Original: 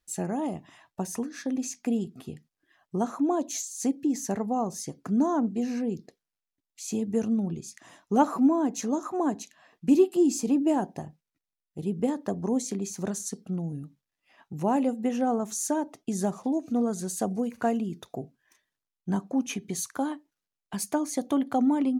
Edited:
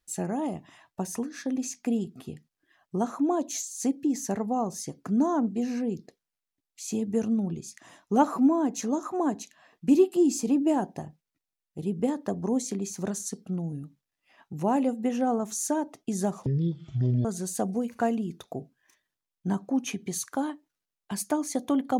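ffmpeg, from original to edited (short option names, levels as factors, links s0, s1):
-filter_complex "[0:a]asplit=3[s0][s1][s2];[s0]atrim=end=16.464[s3];[s1]atrim=start=16.46:end=16.87,asetpts=PTS-STARTPTS,asetrate=22932,aresample=44100,atrim=end_sample=34771,asetpts=PTS-STARTPTS[s4];[s2]atrim=start=16.866[s5];[s3][s4]acrossfade=d=0.004:c1=hsin:c2=hsin[s6];[s6][s5]acrossfade=d=0.004:c1=hsin:c2=hsin"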